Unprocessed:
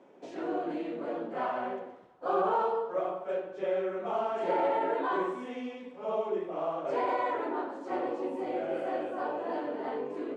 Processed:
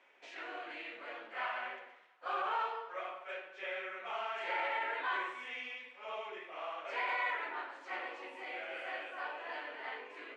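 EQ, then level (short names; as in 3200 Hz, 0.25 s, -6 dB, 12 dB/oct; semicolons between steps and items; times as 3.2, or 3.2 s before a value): band-pass 2200 Hz, Q 2.1; tilt +2.5 dB/oct; +6.0 dB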